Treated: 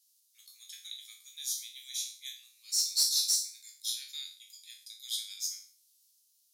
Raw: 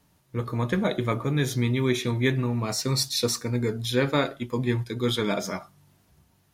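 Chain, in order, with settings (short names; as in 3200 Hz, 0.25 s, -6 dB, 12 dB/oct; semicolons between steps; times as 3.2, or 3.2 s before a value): spectral trails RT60 0.43 s; inverse Chebyshev high-pass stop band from 770 Hz, stop band 80 dB; in parallel at -3.5 dB: soft clip -24.5 dBFS, distortion -13 dB; on the sum: gain -3 dB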